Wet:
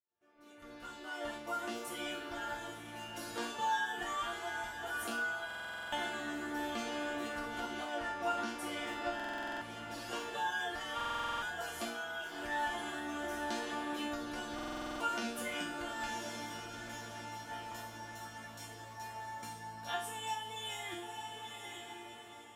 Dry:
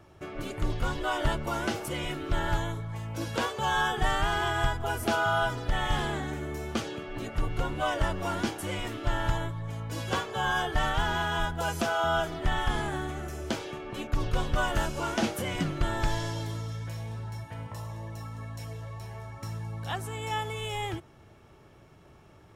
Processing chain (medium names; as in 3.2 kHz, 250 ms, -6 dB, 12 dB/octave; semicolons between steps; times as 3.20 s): fade-in on the opening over 4.25 s; high-pass 57 Hz 12 dB/octave; echo that smears into a reverb 920 ms, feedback 42%, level -10 dB; level rider gain up to 5 dB; 7.84–10.01 s: treble shelf 6.7 kHz -6 dB; compression, threshold -30 dBFS, peak gain reduction 12 dB; bass shelf 190 Hz -10 dB; hum notches 60/120/180/240/300 Hz; chord resonator A#3 major, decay 0.47 s; buffer glitch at 5.46/9.15/10.96/14.54 s, samples 2048, times 9; trim +16 dB